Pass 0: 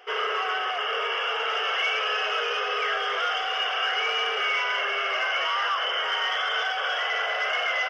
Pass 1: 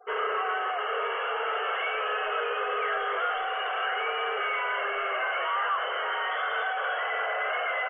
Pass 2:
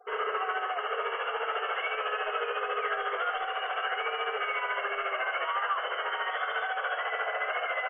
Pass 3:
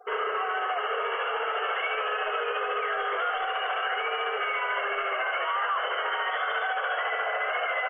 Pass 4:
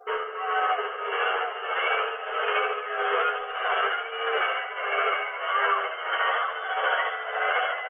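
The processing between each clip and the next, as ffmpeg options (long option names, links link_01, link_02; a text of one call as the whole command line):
ffmpeg -i in.wav -af "lowpass=1900,aemphasis=mode=reproduction:type=cd,afftfilt=real='re*gte(hypot(re,im),0.00501)':imag='im*gte(hypot(re,im),0.00501)':win_size=1024:overlap=0.75" out.wav
ffmpeg -i in.wav -af "tremolo=f=14:d=0.51" out.wav
ffmpeg -i in.wav -af "alimiter=level_in=1.5dB:limit=-24dB:level=0:latency=1:release=25,volume=-1.5dB,volume=5dB" out.wav
ffmpeg -i in.wav -filter_complex "[0:a]tremolo=f=1.6:d=0.73,aecho=1:1:714:0.562,asplit=2[link_01][link_02];[link_02]adelay=11.1,afreqshift=-0.44[link_03];[link_01][link_03]amix=inputs=2:normalize=1,volume=7dB" out.wav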